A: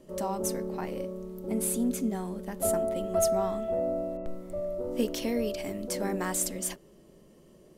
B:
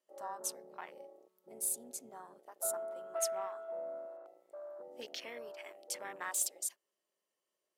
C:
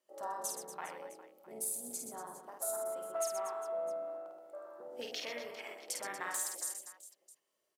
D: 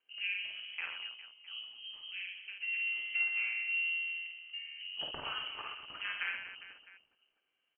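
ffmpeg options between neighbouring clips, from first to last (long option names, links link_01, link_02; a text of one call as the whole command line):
ffmpeg -i in.wav -af "highpass=1000,afwtdn=0.00631,volume=-3.5dB" out.wav
ffmpeg -i in.wav -filter_complex "[0:a]acompressor=threshold=-38dB:ratio=6,asplit=2[link_01][link_02];[link_02]aecho=0:1:50|125|237.5|406.2|659.4:0.631|0.398|0.251|0.158|0.1[link_03];[link_01][link_03]amix=inputs=2:normalize=0,volume=2.5dB" out.wav
ffmpeg -i in.wav -af "lowpass=frequency=2900:width_type=q:width=0.5098,lowpass=frequency=2900:width_type=q:width=0.6013,lowpass=frequency=2900:width_type=q:width=0.9,lowpass=frequency=2900:width_type=q:width=2.563,afreqshift=-3400,volume=3.5dB" out.wav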